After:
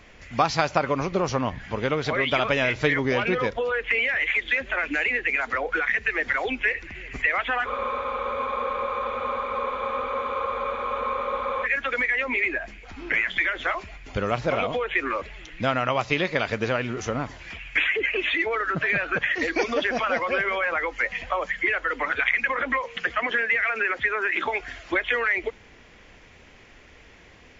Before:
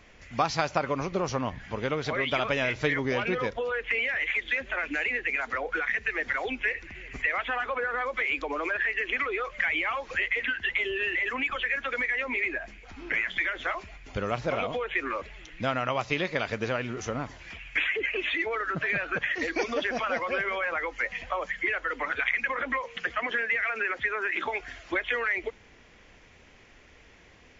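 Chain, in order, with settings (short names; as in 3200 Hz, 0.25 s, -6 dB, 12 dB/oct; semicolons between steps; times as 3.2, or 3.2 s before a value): bell 6000 Hz -2 dB 0.38 oct; spectral freeze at 7.69, 3.96 s; gain +4.5 dB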